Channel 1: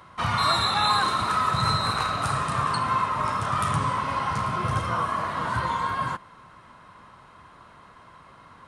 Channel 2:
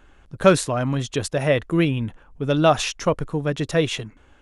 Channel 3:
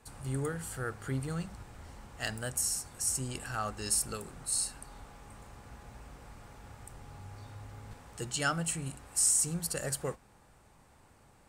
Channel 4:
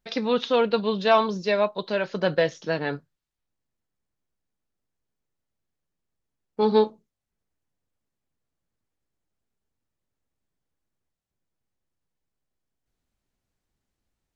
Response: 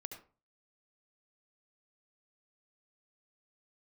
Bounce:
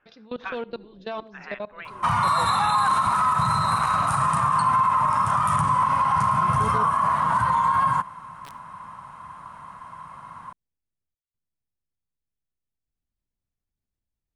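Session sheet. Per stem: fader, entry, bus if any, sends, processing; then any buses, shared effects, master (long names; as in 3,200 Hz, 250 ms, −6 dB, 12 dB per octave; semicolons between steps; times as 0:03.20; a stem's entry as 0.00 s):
+1.5 dB, 1.85 s, no send, graphic EQ with 15 bands 160 Hz +6 dB, 400 Hz −10 dB, 1,000 Hz +11 dB, 4,000 Hz −6 dB, 10,000 Hz +7 dB
−14.0 dB, 0.00 s, no send, gate on every frequency bin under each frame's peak −15 dB weak; parametric band 2,600 Hz +8.5 dB 0.76 octaves; auto-filter low-pass square 0.79 Hz 330–1,500 Hz
−13.5 dB, 0.00 s, send −5.5 dB, high-shelf EQ 2,300 Hz −12 dB; bit reduction 4 bits
−12.0 dB, 0.00 s, send −11 dB, output level in coarse steps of 21 dB; low-shelf EQ 210 Hz +11.5 dB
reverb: on, RT60 0.35 s, pre-delay 65 ms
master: brickwall limiter −13 dBFS, peak gain reduction 10 dB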